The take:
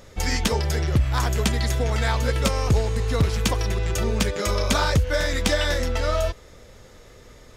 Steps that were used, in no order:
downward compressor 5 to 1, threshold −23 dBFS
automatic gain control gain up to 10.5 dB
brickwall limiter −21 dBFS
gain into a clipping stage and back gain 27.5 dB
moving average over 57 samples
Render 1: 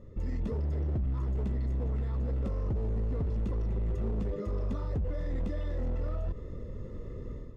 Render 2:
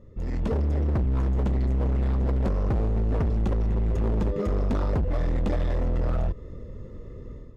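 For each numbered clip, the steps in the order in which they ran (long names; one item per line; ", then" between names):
automatic gain control, then brickwall limiter, then moving average, then downward compressor, then gain into a clipping stage and back
moving average, then gain into a clipping stage and back, then automatic gain control, then downward compressor, then brickwall limiter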